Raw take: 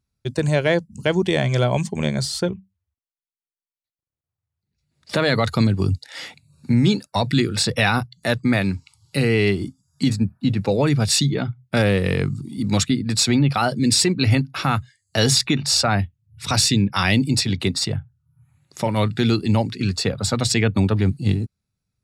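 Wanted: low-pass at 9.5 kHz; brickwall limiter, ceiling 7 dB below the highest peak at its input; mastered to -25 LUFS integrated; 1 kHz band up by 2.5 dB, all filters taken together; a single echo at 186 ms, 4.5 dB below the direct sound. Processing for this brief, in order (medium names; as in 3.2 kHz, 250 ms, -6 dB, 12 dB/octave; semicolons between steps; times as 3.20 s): low-pass 9.5 kHz; peaking EQ 1 kHz +3.5 dB; peak limiter -11 dBFS; delay 186 ms -4.5 dB; trim -4 dB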